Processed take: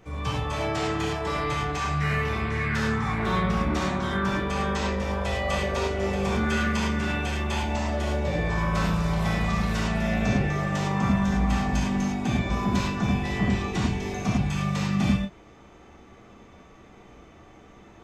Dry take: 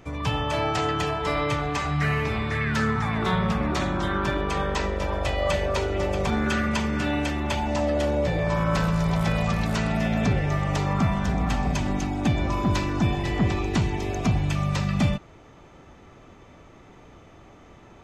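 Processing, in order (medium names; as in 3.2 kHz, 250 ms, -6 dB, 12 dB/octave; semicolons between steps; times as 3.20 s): gated-style reverb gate 130 ms flat, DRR -5 dB; trim -6.5 dB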